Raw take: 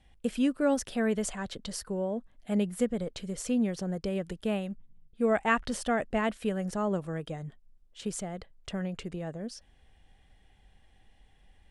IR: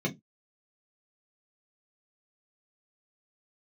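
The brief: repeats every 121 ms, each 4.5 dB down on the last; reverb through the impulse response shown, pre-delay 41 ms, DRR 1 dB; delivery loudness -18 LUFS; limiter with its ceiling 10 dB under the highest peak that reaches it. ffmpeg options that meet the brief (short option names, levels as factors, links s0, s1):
-filter_complex "[0:a]alimiter=limit=0.075:level=0:latency=1,aecho=1:1:121|242|363|484|605|726|847|968|1089:0.596|0.357|0.214|0.129|0.0772|0.0463|0.0278|0.0167|0.01,asplit=2[s0][s1];[1:a]atrim=start_sample=2205,adelay=41[s2];[s1][s2]afir=irnorm=-1:irlink=0,volume=0.398[s3];[s0][s3]amix=inputs=2:normalize=0,volume=2.11"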